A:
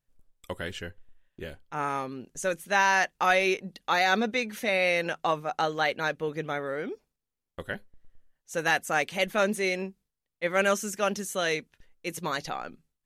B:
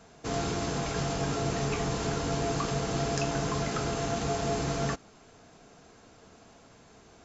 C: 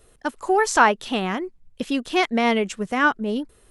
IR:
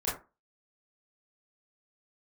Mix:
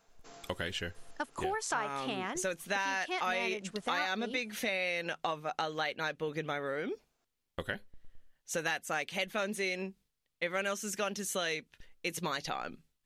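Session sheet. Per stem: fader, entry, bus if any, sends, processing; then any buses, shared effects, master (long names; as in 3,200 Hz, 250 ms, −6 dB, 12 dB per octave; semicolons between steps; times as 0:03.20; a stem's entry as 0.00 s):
+2.0 dB, 0.00 s, no send, parametric band 3,400 Hz +5 dB 1.7 octaves
−14.5 dB, 0.00 s, no send, high-pass filter 620 Hz 6 dB per octave; speech leveller; automatic ducking −13 dB, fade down 0.85 s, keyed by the first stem
−3.5 dB, 0.95 s, no send, low-shelf EQ 300 Hz −11 dB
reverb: not used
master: downward compressor 4 to 1, threshold −33 dBFS, peak gain reduction 16 dB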